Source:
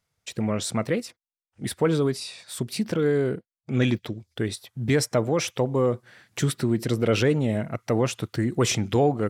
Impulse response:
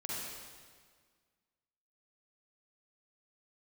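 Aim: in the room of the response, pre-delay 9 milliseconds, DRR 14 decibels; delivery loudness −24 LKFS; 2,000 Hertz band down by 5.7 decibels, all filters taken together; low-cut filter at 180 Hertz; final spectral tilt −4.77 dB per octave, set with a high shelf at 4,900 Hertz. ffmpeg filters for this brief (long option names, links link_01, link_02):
-filter_complex "[0:a]highpass=180,equalizer=frequency=2000:width_type=o:gain=-8,highshelf=frequency=4900:gain=3.5,asplit=2[link_01][link_02];[1:a]atrim=start_sample=2205,adelay=9[link_03];[link_02][link_03]afir=irnorm=-1:irlink=0,volume=-16dB[link_04];[link_01][link_04]amix=inputs=2:normalize=0,volume=2.5dB"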